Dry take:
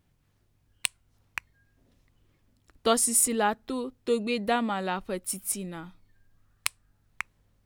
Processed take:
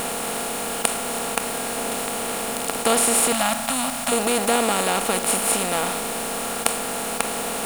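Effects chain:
compressor on every frequency bin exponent 0.2
0:03.32–0:04.12: elliptic band-stop filter 280–560 Hz
bit-depth reduction 6 bits, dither triangular
level −1 dB

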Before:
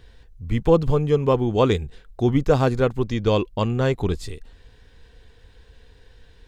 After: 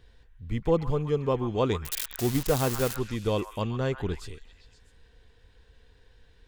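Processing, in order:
0:01.85–0:02.96: spike at every zero crossing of −10.5 dBFS
on a send: echo through a band-pass that steps 130 ms, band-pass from 1,300 Hz, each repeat 0.7 octaves, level −6.5 dB
on the sum: level −7.5 dB

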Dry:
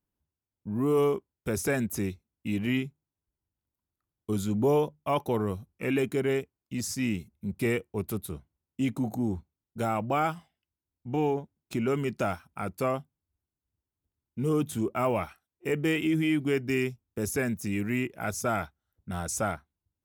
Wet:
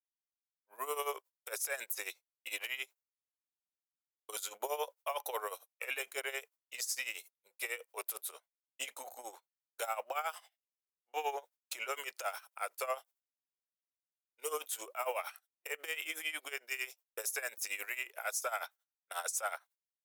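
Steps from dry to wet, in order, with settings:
elliptic high-pass filter 510 Hz, stop band 80 dB
downward expander −52 dBFS
spectral tilt +3 dB per octave
brickwall limiter −29 dBFS, peak gain reduction 14.5 dB
amplitude tremolo 11 Hz, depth 80%
level +4.5 dB

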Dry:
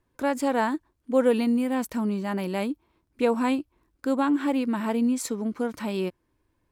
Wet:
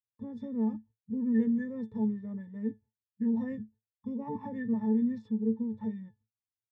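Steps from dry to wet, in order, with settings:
noise gate −46 dBFS, range −33 dB
parametric band 140 Hz +14.5 dB 3 octaves
formants moved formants −6 semitones
resonances in every octave A, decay 0.16 s
pitch vibrato 2.4 Hz 26 cents
level −7 dB

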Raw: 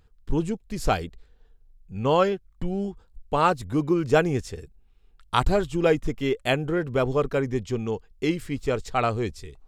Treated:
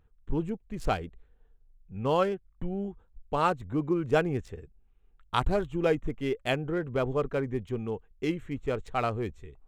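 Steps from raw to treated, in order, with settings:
adaptive Wiener filter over 9 samples
level −5 dB

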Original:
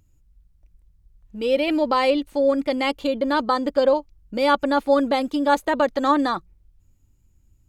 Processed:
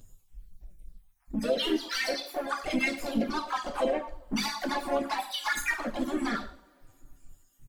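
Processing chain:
time-frequency cells dropped at random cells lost 59%
high-shelf EQ 4,100 Hz +8 dB
notch filter 5,900 Hz, Q 16
in parallel at +2.5 dB: downward compressor 10 to 1, threshold −27 dBFS, peak gain reduction 14 dB
on the sum: brickwall limiter −18 dBFS, peak gain reduction 11.5 dB
soft clipping −24 dBFS, distortion −14 dB
coupled-rooms reverb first 0.41 s, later 2.4 s, from −28 dB, DRR 0.5 dB
flanger swept by the level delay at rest 9.2 ms, full sweep at −21.5 dBFS
on a send: single-tap delay 113 ms −19.5 dB
on the sum: pitch-shifted copies added −5 semitones −17 dB, +4 semitones −6 dB

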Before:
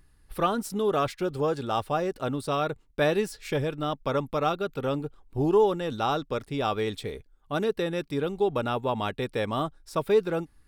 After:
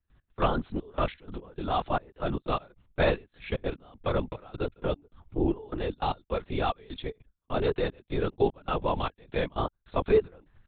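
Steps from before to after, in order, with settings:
gate pattern ".x..xxxx..xx" 152 BPM −24 dB
linear-prediction vocoder at 8 kHz whisper
0:04.14–0:06.32: dynamic equaliser 1,400 Hz, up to −5 dB, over −40 dBFS, Q 1.3

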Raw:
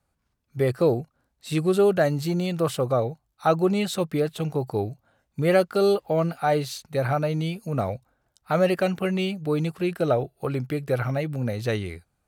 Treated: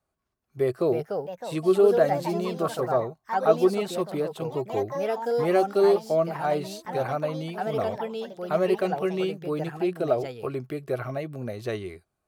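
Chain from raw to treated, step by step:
low-shelf EQ 140 Hz −4.5 dB
hollow resonant body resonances 380/640/1,100 Hz, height 10 dB
delay with pitch and tempo change per echo 424 ms, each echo +3 semitones, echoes 3, each echo −6 dB
level −6.5 dB

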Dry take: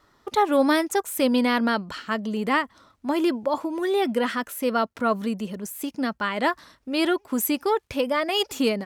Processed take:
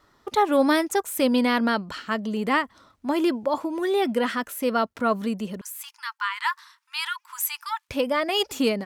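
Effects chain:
0:05.61–0:07.89: linear-phase brick-wall high-pass 870 Hz

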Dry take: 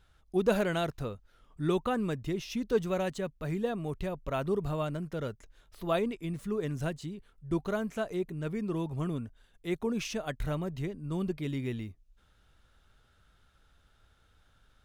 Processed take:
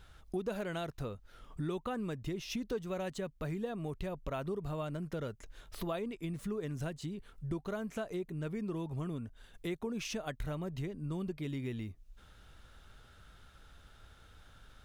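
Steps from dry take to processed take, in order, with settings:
downward compressor 4 to 1, threshold −45 dBFS, peak gain reduction 20.5 dB
level +7.5 dB

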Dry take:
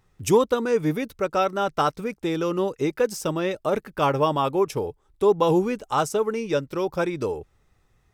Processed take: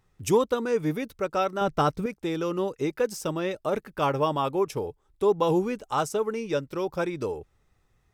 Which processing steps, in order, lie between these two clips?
0:01.61–0:02.06: low-shelf EQ 360 Hz +10 dB
level −3.5 dB

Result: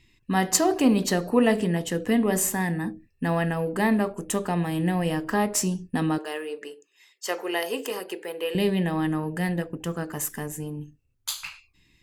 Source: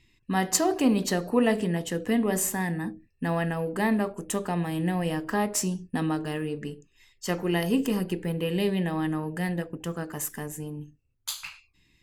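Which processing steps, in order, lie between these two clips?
0:06.18–0:08.55: high-pass filter 400 Hz 24 dB per octave
level +2.5 dB

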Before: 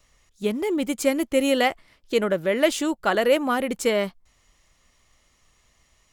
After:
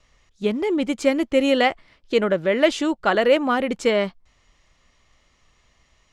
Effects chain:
low-pass filter 5,100 Hz 12 dB per octave
level +2.5 dB

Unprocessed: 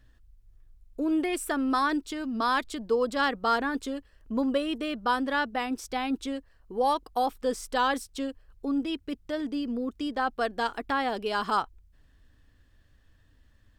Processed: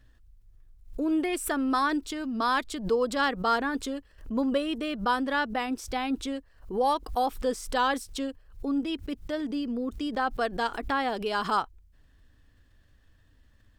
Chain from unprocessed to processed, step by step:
background raised ahead of every attack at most 140 dB per second

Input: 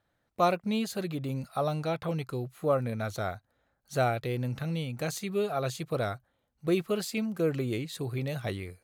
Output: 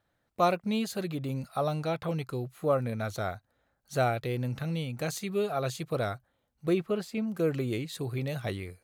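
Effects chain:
0:06.72–0:07.26: high-shelf EQ 4,400 Hz → 2,200 Hz −12 dB

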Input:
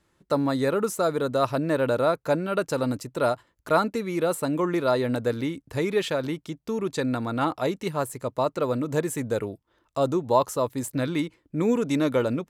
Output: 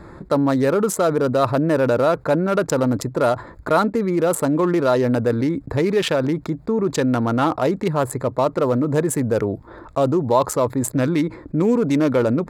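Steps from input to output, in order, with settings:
adaptive Wiener filter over 15 samples
envelope flattener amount 50%
level +3 dB

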